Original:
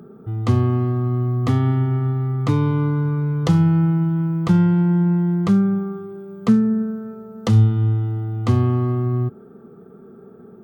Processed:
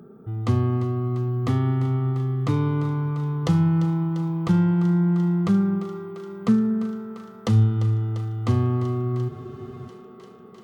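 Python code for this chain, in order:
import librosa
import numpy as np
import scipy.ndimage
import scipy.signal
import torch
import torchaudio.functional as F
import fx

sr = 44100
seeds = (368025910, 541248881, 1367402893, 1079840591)

y = fx.echo_thinned(x, sr, ms=346, feedback_pct=84, hz=300.0, wet_db=-12.5)
y = fx.spec_freeze(y, sr, seeds[0], at_s=9.31, hold_s=0.56)
y = F.gain(torch.from_numpy(y), -4.0).numpy()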